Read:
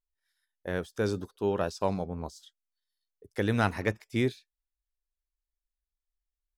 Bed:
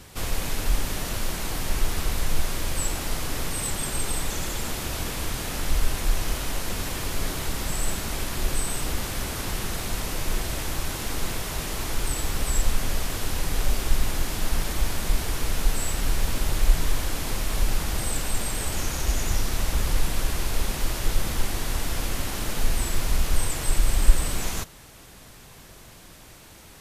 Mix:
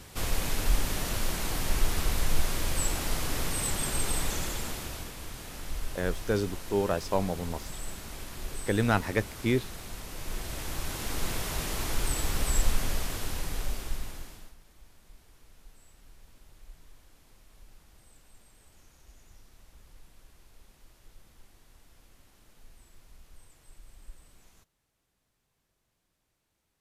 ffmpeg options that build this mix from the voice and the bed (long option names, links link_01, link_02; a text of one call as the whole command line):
ffmpeg -i stem1.wav -i stem2.wav -filter_complex "[0:a]adelay=5300,volume=1dB[link_01];[1:a]volume=7.5dB,afade=type=out:start_time=4.27:duration=0.86:silence=0.316228,afade=type=in:start_time=10.08:duration=1.34:silence=0.334965,afade=type=out:start_time=12.62:duration=1.93:silence=0.0375837[link_02];[link_01][link_02]amix=inputs=2:normalize=0" out.wav